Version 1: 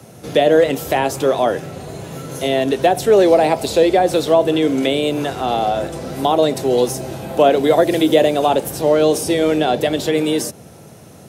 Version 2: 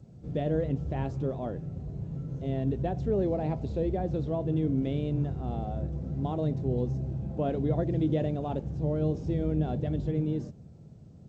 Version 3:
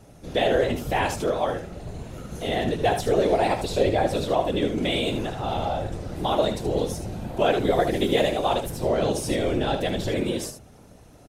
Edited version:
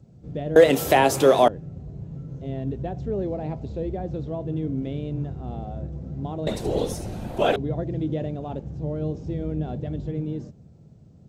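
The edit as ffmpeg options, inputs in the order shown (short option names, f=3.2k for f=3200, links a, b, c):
-filter_complex "[1:a]asplit=3[a][b][c];[a]atrim=end=0.562[d];[0:a]atrim=start=0.558:end=1.482[e];[b]atrim=start=1.478:end=6.472[f];[2:a]atrim=start=6.468:end=7.562[g];[c]atrim=start=7.558[h];[d][e]acrossfade=d=0.004:c1=hsin:c2=hsin[i];[i][f]acrossfade=d=0.004:c1=hsin:c2=hsin[j];[j][g]acrossfade=d=0.004:c1=hsin:c2=hsin[k];[k][h]acrossfade=d=0.004:c1=hsin:c2=hsin"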